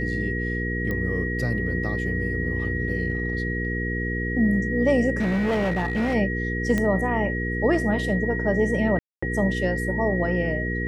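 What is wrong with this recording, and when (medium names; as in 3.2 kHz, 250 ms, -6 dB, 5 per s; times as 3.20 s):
hum 60 Hz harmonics 8 -28 dBFS
whine 1.9 kHz -29 dBFS
0.91 s: pop -17 dBFS
5.18–6.15 s: clipped -20 dBFS
6.78 s: pop -12 dBFS
8.99–9.22 s: dropout 235 ms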